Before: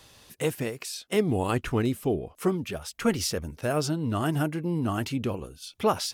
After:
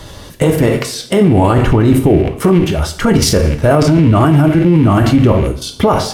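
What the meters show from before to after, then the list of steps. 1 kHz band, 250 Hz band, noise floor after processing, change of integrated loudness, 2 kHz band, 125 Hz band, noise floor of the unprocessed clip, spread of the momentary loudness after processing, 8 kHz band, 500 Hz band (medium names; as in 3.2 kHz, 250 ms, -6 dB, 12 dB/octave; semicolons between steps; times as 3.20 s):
+15.0 dB, +17.5 dB, -33 dBFS, +17.0 dB, +13.5 dB, +19.5 dB, -60 dBFS, 6 LU, +12.5 dB, +15.5 dB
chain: rattle on loud lows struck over -41 dBFS, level -31 dBFS; dynamic bell 900 Hz, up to +4 dB, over -38 dBFS, Q 1.2; band-stop 2.5 kHz, Q 7.6; level held to a coarse grid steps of 15 dB; tilt EQ -2 dB/octave; two-slope reverb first 0.49 s, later 1.8 s, from -27 dB, DRR 4.5 dB; loudness maximiser +26 dB; trim -1 dB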